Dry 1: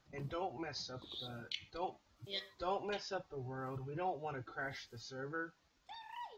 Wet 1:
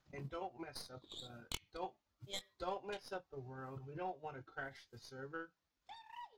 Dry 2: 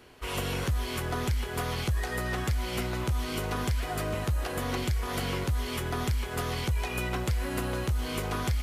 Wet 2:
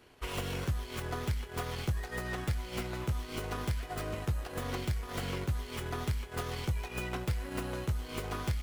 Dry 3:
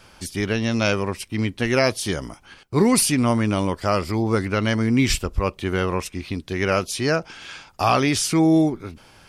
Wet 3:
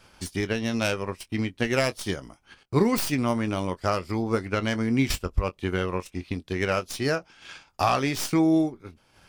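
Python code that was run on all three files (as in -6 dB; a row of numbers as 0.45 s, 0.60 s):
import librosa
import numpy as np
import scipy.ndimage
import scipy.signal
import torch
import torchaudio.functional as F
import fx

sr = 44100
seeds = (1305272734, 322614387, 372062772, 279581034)

y = fx.tracing_dist(x, sr, depth_ms=0.097)
y = fx.transient(y, sr, attack_db=5, sustain_db=-8)
y = fx.doubler(y, sr, ms=22.0, db=-13)
y = y * librosa.db_to_amplitude(-6.0)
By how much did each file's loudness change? -4.5 LU, -5.5 LU, -5.0 LU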